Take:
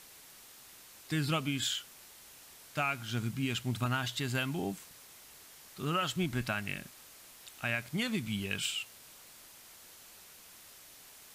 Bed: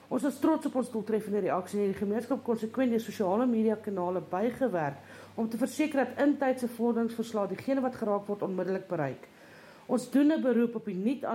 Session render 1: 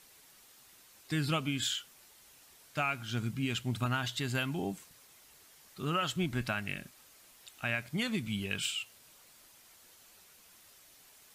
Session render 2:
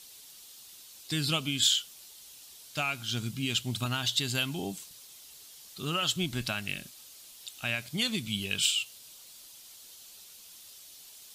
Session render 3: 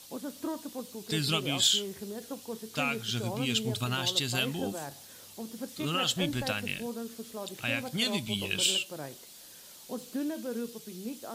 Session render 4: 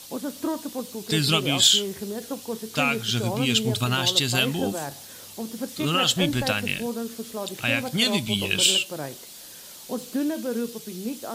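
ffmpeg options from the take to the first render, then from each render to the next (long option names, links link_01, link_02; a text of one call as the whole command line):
ffmpeg -i in.wav -af "afftdn=noise_reduction=6:noise_floor=-55" out.wav
ffmpeg -i in.wav -af "highshelf=frequency=2600:width_type=q:width=1.5:gain=8.5" out.wav
ffmpeg -i in.wav -i bed.wav -filter_complex "[1:a]volume=-9.5dB[link_01];[0:a][link_01]amix=inputs=2:normalize=0" out.wav
ffmpeg -i in.wav -af "volume=7.5dB" out.wav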